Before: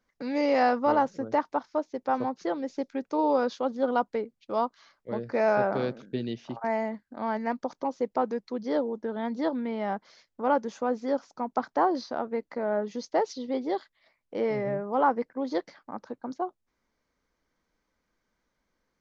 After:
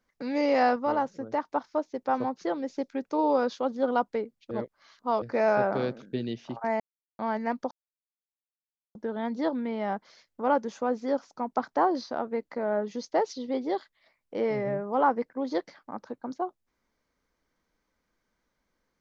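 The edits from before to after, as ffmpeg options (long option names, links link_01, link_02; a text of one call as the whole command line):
ffmpeg -i in.wav -filter_complex "[0:a]asplit=9[link_01][link_02][link_03][link_04][link_05][link_06][link_07][link_08][link_09];[link_01]atrim=end=0.762[link_10];[link_02]atrim=start=0.758:end=1.532,asetpts=PTS-STARTPTS,volume=-3.5dB[link_11];[link_03]atrim=start=1.528:end=4.512[link_12];[link_04]atrim=start=4.508:end=5.222,asetpts=PTS-STARTPTS,areverse[link_13];[link_05]atrim=start=5.218:end=6.8,asetpts=PTS-STARTPTS,afade=type=out:start_time=1.578:duration=0.004:curve=hsin[link_14];[link_06]atrim=start=6.8:end=7.19,asetpts=PTS-STARTPTS,volume=0[link_15];[link_07]atrim=start=7.19:end=7.71,asetpts=PTS-STARTPTS,afade=type=in:duration=0.004:curve=hsin,afade=type=out:start_time=0.516:duration=0.004:curve=hsin[link_16];[link_08]atrim=start=7.71:end=8.95,asetpts=PTS-STARTPTS,volume=0[link_17];[link_09]atrim=start=8.95,asetpts=PTS-STARTPTS,afade=type=in:duration=0.004:curve=hsin[link_18];[link_10][link_11]acrossfade=duration=0.004:curve1=hsin:curve2=hsin[link_19];[link_19][link_12]acrossfade=duration=0.004:curve1=hsin:curve2=hsin[link_20];[link_20][link_13]acrossfade=duration=0.004:curve1=hsin:curve2=hsin[link_21];[link_14][link_15][link_16][link_17][link_18]concat=n=5:v=0:a=1[link_22];[link_21][link_22]acrossfade=duration=0.004:curve1=hsin:curve2=hsin" out.wav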